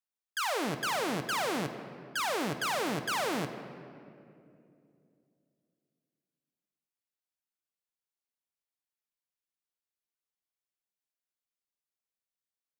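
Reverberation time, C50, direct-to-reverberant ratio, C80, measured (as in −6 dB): 2.6 s, 9.5 dB, 8.0 dB, 10.5 dB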